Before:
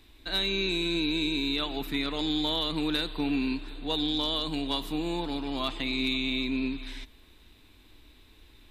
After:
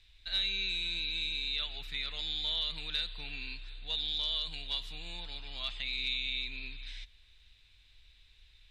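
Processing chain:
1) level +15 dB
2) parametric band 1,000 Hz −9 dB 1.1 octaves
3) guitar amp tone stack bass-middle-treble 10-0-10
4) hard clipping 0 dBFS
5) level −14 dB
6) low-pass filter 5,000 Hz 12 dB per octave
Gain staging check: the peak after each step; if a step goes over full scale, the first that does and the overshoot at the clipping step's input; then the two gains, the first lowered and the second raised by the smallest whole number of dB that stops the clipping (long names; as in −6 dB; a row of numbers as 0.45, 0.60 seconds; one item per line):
−0.5, −2.0, −5.5, −5.5, −19.5, −21.0 dBFS
no step passes full scale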